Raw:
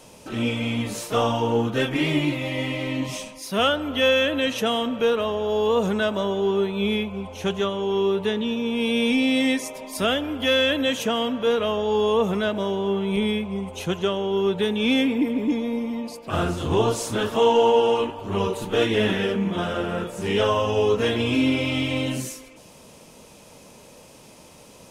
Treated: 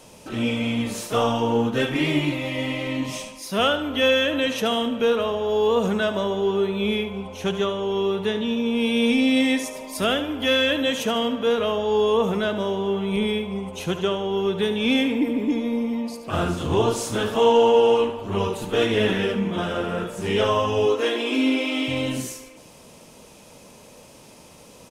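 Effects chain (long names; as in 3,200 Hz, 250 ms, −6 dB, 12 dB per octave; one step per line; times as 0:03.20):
0:20.86–0:21.88: linear-phase brick-wall high-pass 240 Hz
repeating echo 73 ms, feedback 37%, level −11 dB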